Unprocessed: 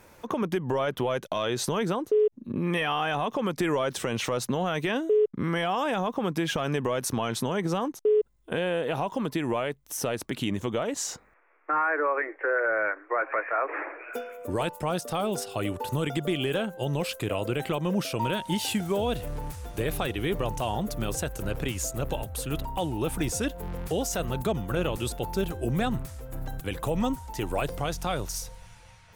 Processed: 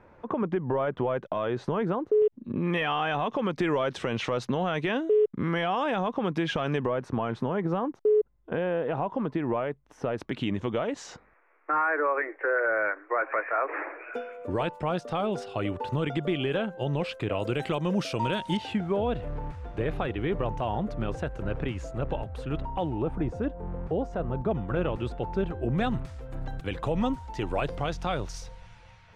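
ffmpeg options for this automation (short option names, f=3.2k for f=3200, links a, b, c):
-af "asetnsamples=n=441:p=0,asendcmd='2.22 lowpass f 3700;6.86 lowpass f 1600;10.18 lowpass f 3100;17.4 lowpass f 6000;18.57 lowpass f 2100;23.02 lowpass f 1100;24.51 lowpass f 2000;25.78 lowpass f 3900',lowpass=1.6k"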